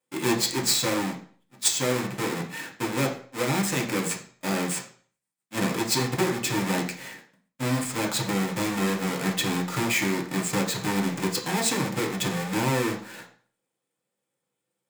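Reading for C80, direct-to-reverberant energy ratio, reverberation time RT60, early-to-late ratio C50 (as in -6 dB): 13.0 dB, -1.0 dB, 0.50 s, 9.5 dB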